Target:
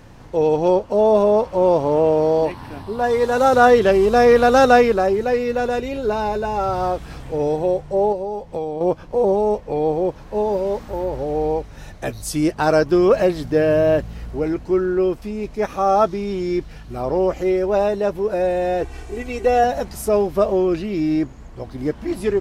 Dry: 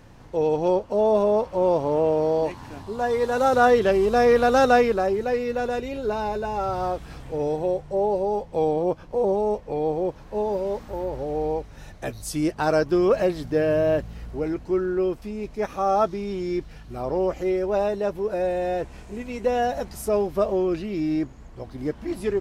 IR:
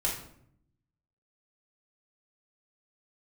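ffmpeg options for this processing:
-filter_complex "[0:a]asettb=1/sr,asplit=3[a][b][c];[a]atrim=end=2.454[d];[b]atrim=start=2.45:end=3.04,asetpts=PTS-STARTPTS,afade=t=in:d=0.004:c=qsin,afade=t=out:st=0.586:d=0.004:c=qsin,equalizer=f=6.8k:t=o:w=0.33:g=-14[e];[c]atrim=start=3.036[f];[d][e]acrossfade=d=0.004:c1=hsin:c2=qsin[g];[g][f]acrossfade=d=0.004:c1=qsin:c2=hsin,asettb=1/sr,asplit=3[h][i][j];[h]atrim=end=8.124[k];[i]atrim=start=8.12:end=8.81,asetpts=PTS-STARTPTS,afade=t=in:d=0.004:c=qsin,afade=t=out:st=0.686:d=0.004:c=qsin,acompressor=threshold=-29dB:ratio=4[l];[j]atrim=start=8.806[m];[k][l]acrossfade=d=0.004:c1=hsin:c2=qsin[n];[n][m]acrossfade=d=0.004:c1=qsin:c2=hsin,asettb=1/sr,asplit=3[o][p][q];[o]atrim=end=18.814[r];[p]atrim=start=18.81:end=19.64,asetpts=PTS-STARTPTS,afade=t=in:d=0.004:c=qsin,afade=t=out:st=0.826:d=0.004:c=qsin,aecho=1:1:2.6:0.72,atrim=end_sample=36603[s];[q]atrim=start=19.636[t];[r][s]acrossfade=d=0.004:c1=hsin:c2=qsin[u];[u][t]acrossfade=d=0.004:c1=qsin:c2=hsin,volume=5dB"

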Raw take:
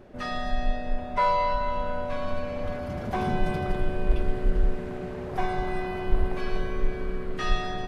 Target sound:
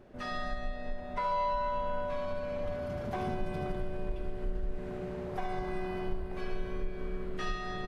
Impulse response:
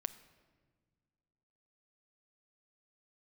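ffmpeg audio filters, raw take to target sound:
-filter_complex "[0:a]acompressor=threshold=-25dB:ratio=4,asplit=2[a][b];[b]aecho=0:1:70|140|210|280|350|420|490:0.355|0.202|0.115|0.0657|0.0375|0.0213|0.0122[c];[a][c]amix=inputs=2:normalize=0,volume=-6dB"

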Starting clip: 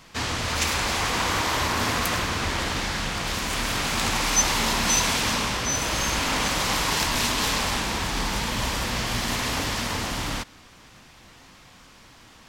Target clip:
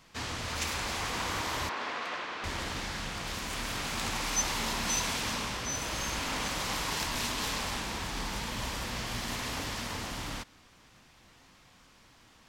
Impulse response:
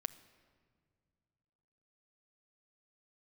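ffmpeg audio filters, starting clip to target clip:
-filter_complex "[0:a]asettb=1/sr,asplit=3[a][b][c];[a]atrim=end=1.694[d];[b]atrim=start=1.69:end=2.44,asetpts=PTS-STARTPTS,afade=t=in:d=0.004:c=qsin,afade=t=out:st=0.746:d=0.004:c=qsin,highpass=400,lowpass=3.3k[e];[c]atrim=start=2.436[f];[d][e]acrossfade=d=0.004:c1=hsin:c2=qsin[g];[g][f]acrossfade=d=0.004:c1=qsin:c2=hsin,volume=-9dB"

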